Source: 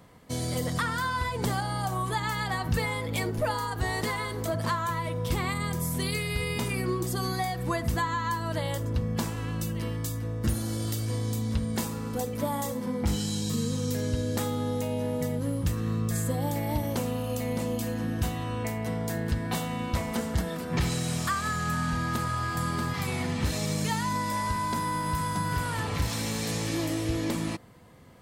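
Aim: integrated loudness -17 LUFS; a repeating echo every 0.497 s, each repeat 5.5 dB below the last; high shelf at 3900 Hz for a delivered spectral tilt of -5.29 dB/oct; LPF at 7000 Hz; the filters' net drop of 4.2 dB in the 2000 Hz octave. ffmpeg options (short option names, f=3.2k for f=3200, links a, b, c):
-af "lowpass=7k,equalizer=f=2k:t=o:g=-6,highshelf=f=3.9k:g=4,aecho=1:1:497|994|1491|1988|2485|2982|3479:0.531|0.281|0.149|0.079|0.0419|0.0222|0.0118,volume=12dB"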